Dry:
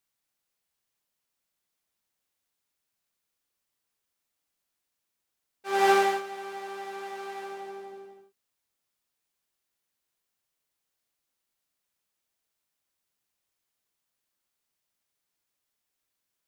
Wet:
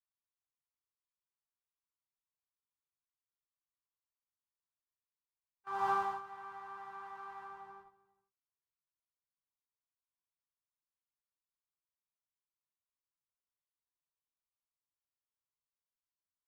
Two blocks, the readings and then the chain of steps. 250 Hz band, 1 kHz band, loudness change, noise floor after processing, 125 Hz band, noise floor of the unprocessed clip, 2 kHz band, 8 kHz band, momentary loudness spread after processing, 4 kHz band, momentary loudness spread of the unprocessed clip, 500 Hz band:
-19.0 dB, -9.0 dB, -11.5 dB, under -85 dBFS, no reading, -83 dBFS, -14.5 dB, under -20 dB, 19 LU, -21.5 dB, 21 LU, -20.0 dB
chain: dynamic bell 1.9 kHz, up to -7 dB, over -42 dBFS, Q 1.5; gate -41 dBFS, range -13 dB; FFT filter 140 Hz 0 dB, 240 Hz -21 dB, 660 Hz -21 dB, 1 kHz +2 dB, 2.3 kHz -19 dB, 8.6 kHz -25 dB; trim +1 dB

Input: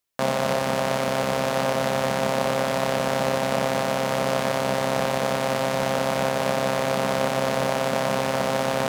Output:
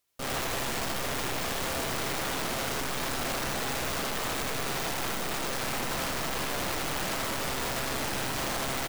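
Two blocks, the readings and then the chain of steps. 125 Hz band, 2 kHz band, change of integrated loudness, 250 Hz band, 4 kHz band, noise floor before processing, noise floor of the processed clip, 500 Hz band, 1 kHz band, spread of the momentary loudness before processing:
-8.5 dB, -4.5 dB, -7.0 dB, -9.0 dB, -2.0 dB, -26 dBFS, -32 dBFS, -13.5 dB, -9.0 dB, 1 LU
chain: peak limiter -13.5 dBFS, peak gain reduction 6 dB; valve stage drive 32 dB, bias 0.55; integer overflow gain 35 dB; on a send: delay 81 ms -3.5 dB; on the sum: trim +5.5 dB

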